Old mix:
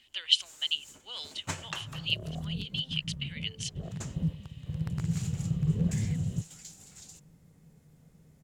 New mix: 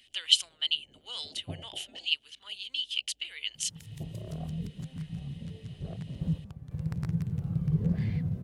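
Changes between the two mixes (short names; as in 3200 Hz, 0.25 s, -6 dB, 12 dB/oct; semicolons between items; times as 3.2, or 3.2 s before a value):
speech: remove air absorption 78 m; first sound: add steep low-pass 790 Hz 96 dB/oct; second sound: entry +2.05 s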